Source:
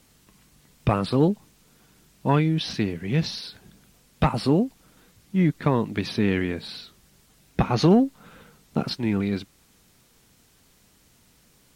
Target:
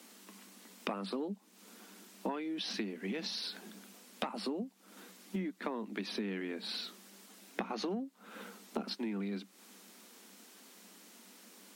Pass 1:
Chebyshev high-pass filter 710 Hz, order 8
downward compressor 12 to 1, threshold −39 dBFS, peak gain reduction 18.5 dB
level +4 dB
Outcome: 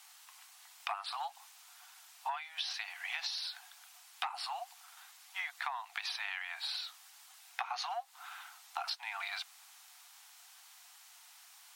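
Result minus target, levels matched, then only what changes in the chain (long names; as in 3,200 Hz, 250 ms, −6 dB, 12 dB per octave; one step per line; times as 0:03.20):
1,000 Hz band +5.5 dB
change: Chebyshev high-pass filter 190 Hz, order 8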